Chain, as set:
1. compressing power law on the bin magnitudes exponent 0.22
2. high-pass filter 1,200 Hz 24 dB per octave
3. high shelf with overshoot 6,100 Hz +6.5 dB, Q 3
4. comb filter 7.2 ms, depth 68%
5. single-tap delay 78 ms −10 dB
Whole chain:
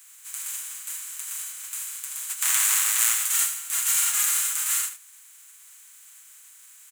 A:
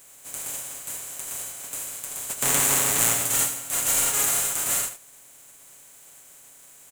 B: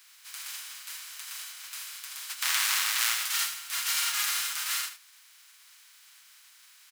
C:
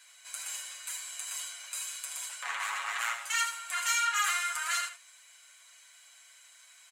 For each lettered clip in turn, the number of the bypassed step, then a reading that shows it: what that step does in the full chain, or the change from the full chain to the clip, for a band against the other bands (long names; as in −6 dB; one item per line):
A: 2, 1 kHz band +5.0 dB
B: 3, 8 kHz band −10.0 dB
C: 1, 8 kHz band −13.0 dB